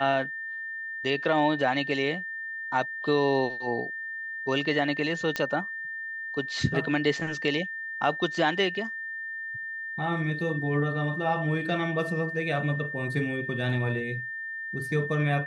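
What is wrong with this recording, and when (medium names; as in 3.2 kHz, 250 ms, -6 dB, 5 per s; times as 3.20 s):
whine 1.8 kHz -33 dBFS
5.36 s: pop -13 dBFS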